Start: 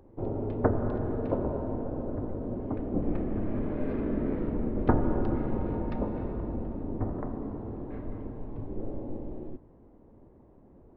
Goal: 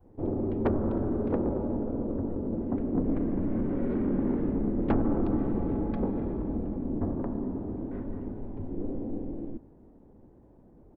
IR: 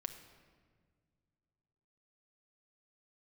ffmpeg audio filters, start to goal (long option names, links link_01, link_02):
-af "adynamicequalizer=threshold=0.00708:dfrequency=310:dqfactor=1.2:tfrequency=310:tqfactor=1.2:attack=5:release=100:ratio=0.375:range=3:mode=boostabove:tftype=bell,asetrate=40440,aresample=44100,atempo=1.09051,asoftclip=type=tanh:threshold=-19dB"